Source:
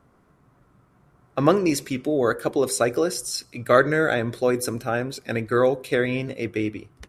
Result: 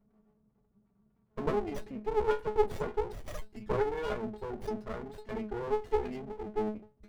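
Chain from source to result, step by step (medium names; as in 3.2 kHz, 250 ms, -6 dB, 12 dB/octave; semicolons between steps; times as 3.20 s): resonances exaggerated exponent 3; inharmonic resonator 210 Hz, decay 0.3 s, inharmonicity 0.008; sliding maximum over 33 samples; trim +7 dB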